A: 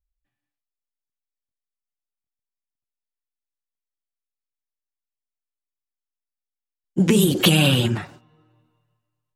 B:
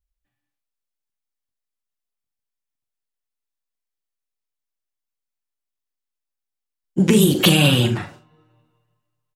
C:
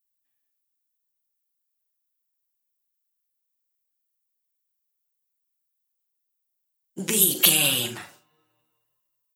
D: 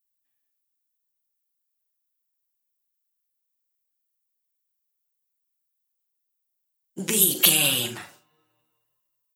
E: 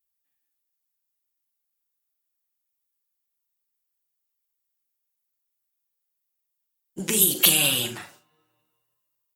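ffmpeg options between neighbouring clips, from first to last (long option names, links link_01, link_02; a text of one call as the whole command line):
ffmpeg -i in.wav -af "aecho=1:1:41|73:0.316|0.15,volume=1.5dB" out.wav
ffmpeg -i in.wav -af "aemphasis=mode=production:type=riaa,volume=-8.5dB" out.wav
ffmpeg -i in.wav -af anull out.wav
ffmpeg -i in.wav -ar 48000 -c:a libopus -b:a 64k out.opus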